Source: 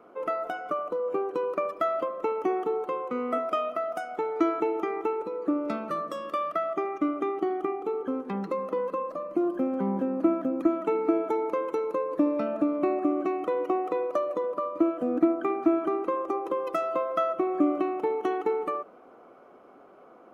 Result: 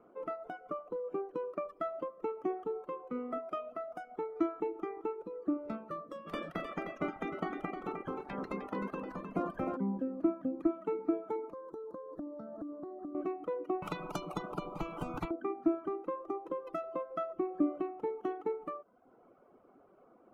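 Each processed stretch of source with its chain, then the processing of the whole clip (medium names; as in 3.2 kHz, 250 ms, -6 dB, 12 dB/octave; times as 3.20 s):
6.26–9.76 s: spectral peaks clipped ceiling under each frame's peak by 24 dB + delay 308 ms -6.5 dB
11.52–13.15 s: compression 12:1, threshold -31 dBFS + Butterworth band-stop 2.5 kHz, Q 1.1
13.82–15.31 s: static phaser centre 350 Hz, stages 8 + spectrum-flattening compressor 10:1
whole clip: bass shelf 200 Hz +11 dB; reverb removal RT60 0.78 s; treble shelf 2.6 kHz -9.5 dB; trim -9 dB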